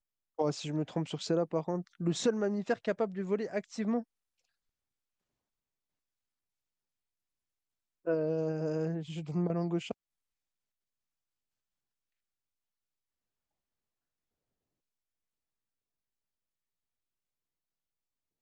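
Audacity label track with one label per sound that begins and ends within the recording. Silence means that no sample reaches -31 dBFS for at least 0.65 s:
8.070000	9.920000	sound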